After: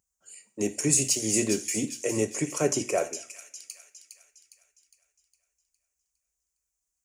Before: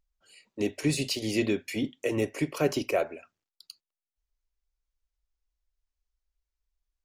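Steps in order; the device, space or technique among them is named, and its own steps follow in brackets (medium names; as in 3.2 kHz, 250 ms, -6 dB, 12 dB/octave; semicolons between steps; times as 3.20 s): 1.93–2.99 s: low-pass 9.7 kHz 12 dB/octave; budget condenser microphone (high-pass 83 Hz 12 dB/octave; resonant high shelf 5.3 kHz +10 dB, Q 3); peaking EQ 13 kHz -9 dB 0.31 oct; feedback echo behind a high-pass 409 ms, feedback 47%, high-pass 2.9 kHz, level -7 dB; two-slope reverb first 0.4 s, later 1.8 s, from -27 dB, DRR 10.5 dB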